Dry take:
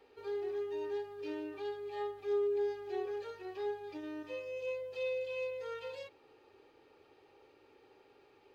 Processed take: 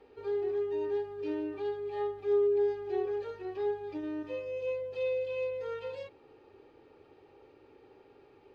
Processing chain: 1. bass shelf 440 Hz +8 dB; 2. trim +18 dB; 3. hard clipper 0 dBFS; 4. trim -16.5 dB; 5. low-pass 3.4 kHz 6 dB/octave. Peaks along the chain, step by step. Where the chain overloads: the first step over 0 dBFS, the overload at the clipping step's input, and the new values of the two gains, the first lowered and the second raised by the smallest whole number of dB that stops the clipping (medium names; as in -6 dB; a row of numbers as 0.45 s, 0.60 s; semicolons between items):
-22.5 dBFS, -4.5 dBFS, -4.5 dBFS, -21.0 dBFS, -21.0 dBFS; nothing clips